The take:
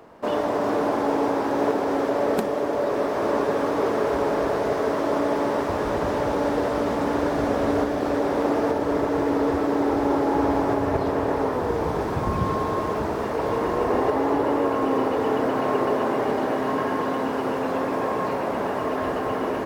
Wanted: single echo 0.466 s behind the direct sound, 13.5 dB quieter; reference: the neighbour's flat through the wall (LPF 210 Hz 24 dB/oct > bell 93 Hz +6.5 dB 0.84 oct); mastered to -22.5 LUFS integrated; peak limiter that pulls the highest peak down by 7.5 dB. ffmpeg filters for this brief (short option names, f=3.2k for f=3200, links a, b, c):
-af "alimiter=limit=-17dB:level=0:latency=1,lowpass=f=210:w=0.5412,lowpass=f=210:w=1.3066,equalizer=f=93:t=o:w=0.84:g=6.5,aecho=1:1:466:0.211,volume=14dB"